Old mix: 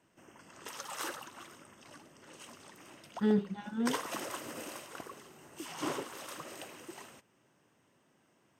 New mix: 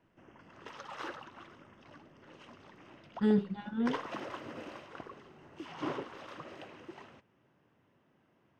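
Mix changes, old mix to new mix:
background: add air absorption 240 m; master: add low shelf 73 Hz +11 dB

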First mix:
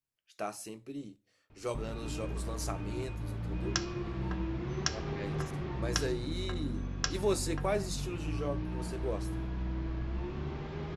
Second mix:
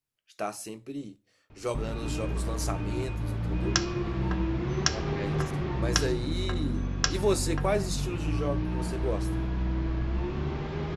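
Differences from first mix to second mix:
speech +4.5 dB; background +6.5 dB

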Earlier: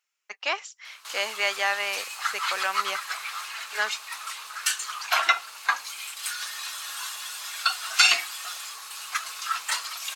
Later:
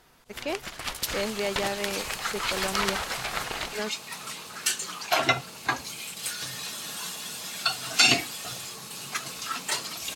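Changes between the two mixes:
speech -8.5 dB; first sound: unmuted; master: remove resonant high-pass 1200 Hz, resonance Q 1.8

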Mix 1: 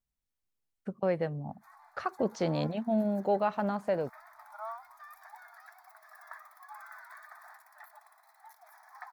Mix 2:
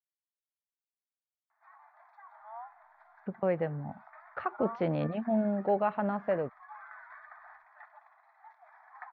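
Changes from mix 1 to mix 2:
speech: entry +2.40 s; master: add LPF 2700 Hz 24 dB/oct

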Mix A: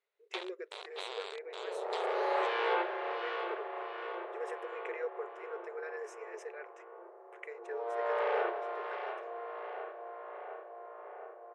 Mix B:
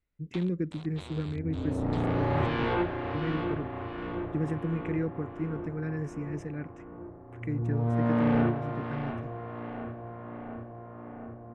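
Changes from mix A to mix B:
first sound -6.0 dB; master: remove brick-wall FIR high-pass 370 Hz

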